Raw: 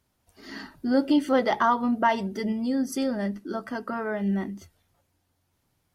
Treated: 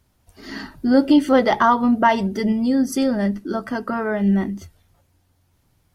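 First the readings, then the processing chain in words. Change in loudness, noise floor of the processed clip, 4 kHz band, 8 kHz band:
+7.0 dB, −64 dBFS, +6.0 dB, +6.0 dB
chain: low-shelf EQ 120 Hz +9 dB
level +6 dB

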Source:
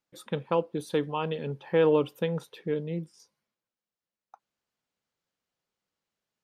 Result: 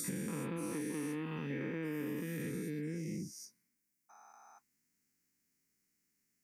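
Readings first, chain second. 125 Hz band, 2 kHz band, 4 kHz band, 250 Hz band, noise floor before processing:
−6.5 dB, −5.5 dB, −11.5 dB, −4.5 dB, below −85 dBFS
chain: every bin's largest magnitude spread in time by 480 ms
drawn EQ curve 120 Hz 0 dB, 280 Hz +8 dB, 590 Hz −15 dB, 1,300 Hz −8 dB, 2,100 Hz +5 dB, 3,400 Hz −12 dB, 5,500 Hz +6 dB, 11,000 Hz +11 dB
downward compressor 6 to 1, threshold −34 dBFS, peak gain reduction 16 dB
level −3.5 dB

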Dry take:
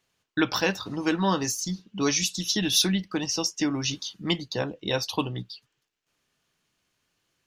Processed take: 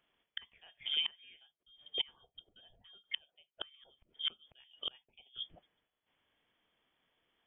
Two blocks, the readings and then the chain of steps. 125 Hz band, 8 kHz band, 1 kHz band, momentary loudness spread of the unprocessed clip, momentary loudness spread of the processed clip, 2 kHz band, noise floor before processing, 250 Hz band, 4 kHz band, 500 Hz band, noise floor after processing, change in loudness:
below −35 dB, below −40 dB, −28.5 dB, 11 LU, 24 LU, −18.5 dB, −79 dBFS, below −40 dB, −9.0 dB, −29.5 dB, below −85 dBFS, −13.0 dB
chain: gate with flip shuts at −21 dBFS, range −33 dB
voice inversion scrambler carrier 3,400 Hz
level −2 dB

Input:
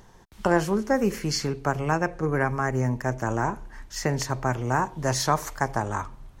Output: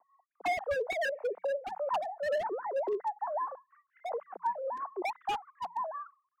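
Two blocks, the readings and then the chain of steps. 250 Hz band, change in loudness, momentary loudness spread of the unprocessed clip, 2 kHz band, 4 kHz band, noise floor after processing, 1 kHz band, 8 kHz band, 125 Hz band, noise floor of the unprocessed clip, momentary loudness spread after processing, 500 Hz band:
−22.5 dB, −8.5 dB, 6 LU, −9.0 dB, −12.5 dB, −81 dBFS, −6.0 dB, below −20 dB, below −35 dB, −51 dBFS, 7 LU, −5.5 dB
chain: three sine waves on the formant tracks
in parallel at −5.5 dB: soft clipping −21.5 dBFS, distortion −12 dB
on the sum: transistor ladder low-pass 880 Hz, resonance 30%
frequency shifter +170 Hz
wave folding −23.5 dBFS
rotating-speaker cabinet horn 5.5 Hz, later 1.2 Hz, at 0:03.83

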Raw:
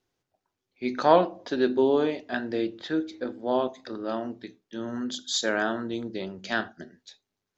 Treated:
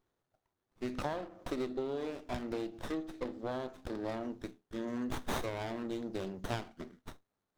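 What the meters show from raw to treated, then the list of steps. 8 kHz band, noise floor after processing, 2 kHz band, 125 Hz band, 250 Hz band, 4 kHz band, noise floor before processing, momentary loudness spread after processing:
can't be measured, below −85 dBFS, −14.0 dB, −2.5 dB, −9.5 dB, −14.0 dB, −85 dBFS, 7 LU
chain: downward compressor 16 to 1, threshold −30 dBFS, peak gain reduction 19 dB
high-shelf EQ 4,000 Hz +10 dB
windowed peak hold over 17 samples
level −2.5 dB

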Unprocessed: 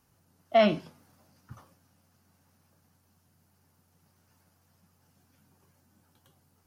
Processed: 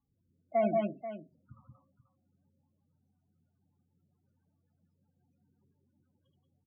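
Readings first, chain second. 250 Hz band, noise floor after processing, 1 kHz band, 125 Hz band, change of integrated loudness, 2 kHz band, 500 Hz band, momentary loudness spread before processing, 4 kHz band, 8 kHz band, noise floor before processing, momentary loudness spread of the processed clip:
−4.5 dB, −78 dBFS, −5.0 dB, −5.5 dB, −7.0 dB, −12.0 dB, −5.0 dB, 9 LU, below −20 dB, can't be measured, −69 dBFS, 15 LU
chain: rotating-speaker cabinet horn 1.1 Hz, later 7.5 Hz, at 0:01.89
multi-tap delay 56/74/78/180/195/485 ms −18.5/−16.5/−8/−3.5/−10/−12.5 dB
spectral peaks only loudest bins 16
level −7 dB

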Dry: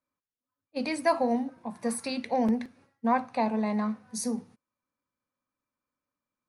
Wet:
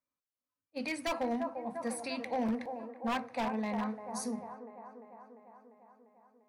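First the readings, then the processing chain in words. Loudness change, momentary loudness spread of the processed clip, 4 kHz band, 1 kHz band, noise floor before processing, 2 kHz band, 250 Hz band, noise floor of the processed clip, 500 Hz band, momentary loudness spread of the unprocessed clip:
−6.5 dB, 17 LU, −3.0 dB, −6.5 dB, below −85 dBFS, −3.0 dB, −7.0 dB, below −85 dBFS, −6.5 dB, 8 LU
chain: dynamic equaliser 2,100 Hz, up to +6 dB, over −47 dBFS, Q 1.2
delay with a band-pass on its return 347 ms, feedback 66%, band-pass 630 Hz, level −7 dB
wave folding −19.5 dBFS
level −7 dB

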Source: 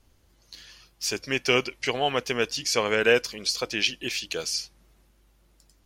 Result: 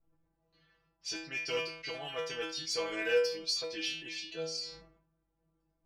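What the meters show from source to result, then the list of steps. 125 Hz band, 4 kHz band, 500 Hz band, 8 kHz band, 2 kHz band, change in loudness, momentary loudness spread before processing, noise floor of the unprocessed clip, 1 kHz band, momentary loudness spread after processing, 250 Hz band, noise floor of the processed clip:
−15.0 dB, −8.5 dB, −8.0 dB, −12.0 dB, −11.0 dB, −9.5 dB, 8 LU, −63 dBFS, −14.0 dB, 10 LU, −12.5 dB, −80 dBFS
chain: low-pass that shuts in the quiet parts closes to 1,000 Hz, open at −22 dBFS
stiff-string resonator 160 Hz, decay 0.52 s, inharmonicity 0.002
in parallel at −5.5 dB: soft clipping −32.5 dBFS, distortion −9 dB
on the sum: dynamic equaliser 4,800 Hz, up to +7 dB, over −58 dBFS, Q 4.8
level that may fall only so fast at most 86 dB per second

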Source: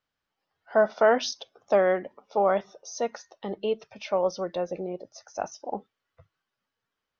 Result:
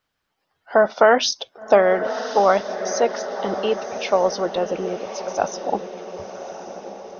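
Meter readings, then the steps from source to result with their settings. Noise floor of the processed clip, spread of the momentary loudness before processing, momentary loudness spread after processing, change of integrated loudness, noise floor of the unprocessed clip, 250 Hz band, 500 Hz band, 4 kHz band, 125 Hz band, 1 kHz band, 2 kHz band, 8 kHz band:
−75 dBFS, 16 LU, 19 LU, +6.5 dB, −85 dBFS, +6.5 dB, +6.5 dB, +10.0 dB, +5.5 dB, +8.5 dB, +8.0 dB, can't be measured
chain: feedback delay with all-pass diffusion 1,116 ms, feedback 52%, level −10 dB
harmonic and percussive parts rebalanced percussive +6 dB
level +4.5 dB

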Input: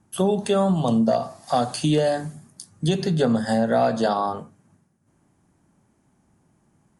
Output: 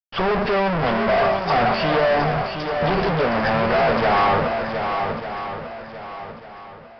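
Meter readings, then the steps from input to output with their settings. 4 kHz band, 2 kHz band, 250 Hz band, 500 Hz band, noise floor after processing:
+4.0 dB, +13.0 dB, −3.0 dB, +3.5 dB, −41 dBFS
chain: phase distortion by the signal itself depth 0.25 ms
fuzz pedal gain 45 dB, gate −51 dBFS
octave-band graphic EQ 125/250/4,000 Hz −7/−9/−12 dB
on a send: feedback echo with a long and a short gap by turns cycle 1,196 ms, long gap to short 1.5 to 1, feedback 30%, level −6.5 dB
on the sum: downsampling to 11,025 Hz
level −1.5 dB

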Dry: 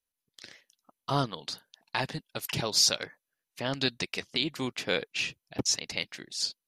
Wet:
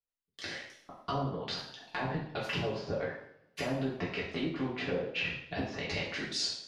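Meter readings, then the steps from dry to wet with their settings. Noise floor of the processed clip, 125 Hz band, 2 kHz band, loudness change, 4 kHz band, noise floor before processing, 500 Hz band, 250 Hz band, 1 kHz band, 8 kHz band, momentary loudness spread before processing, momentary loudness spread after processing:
below −85 dBFS, −0.5 dB, −2.0 dB, −5.5 dB, −8.5 dB, below −85 dBFS, +0.5 dB, 0.0 dB, −2.5 dB, −15.0 dB, 15 LU, 8 LU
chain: noise gate with hold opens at −54 dBFS
low-pass filter 2,100 Hz 6 dB per octave
treble cut that deepens with the level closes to 660 Hz, closed at −27.5 dBFS
brickwall limiter −26 dBFS, peak gain reduction 10.5 dB
downward compressor 4 to 1, threshold −46 dBFS, peak gain reduction 13 dB
coupled-rooms reverb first 0.61 s, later 1.7 s, from −24 dB, DRR −6.5 dB
level +7.5 dB

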